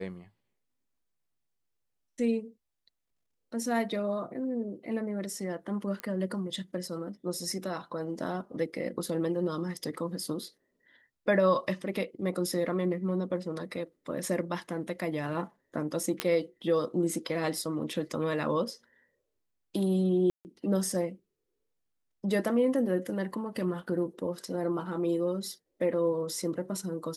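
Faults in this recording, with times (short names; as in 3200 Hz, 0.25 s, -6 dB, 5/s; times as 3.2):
6 pop -20 dBFS
16.2 pop -11 dBFS
20.3–20.45 gap 0.149 s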